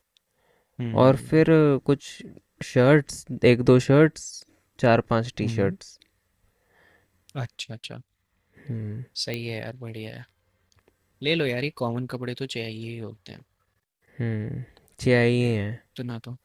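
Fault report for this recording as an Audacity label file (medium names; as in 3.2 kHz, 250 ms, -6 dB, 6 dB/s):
9.340000	9.340000	pop -16 dBFS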